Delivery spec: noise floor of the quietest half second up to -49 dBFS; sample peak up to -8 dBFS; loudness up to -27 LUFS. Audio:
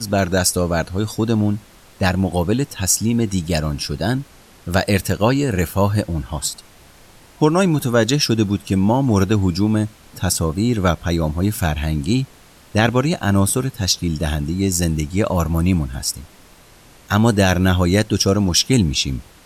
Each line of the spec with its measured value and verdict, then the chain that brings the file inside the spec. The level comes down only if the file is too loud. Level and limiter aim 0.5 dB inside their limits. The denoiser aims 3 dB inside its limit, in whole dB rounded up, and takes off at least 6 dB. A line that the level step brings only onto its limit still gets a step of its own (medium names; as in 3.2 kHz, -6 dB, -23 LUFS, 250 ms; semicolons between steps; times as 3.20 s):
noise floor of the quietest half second -47 dBFS: fail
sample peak -2.5 dBFS: fail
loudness -18.5 LUFS: fail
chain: trim -9 dB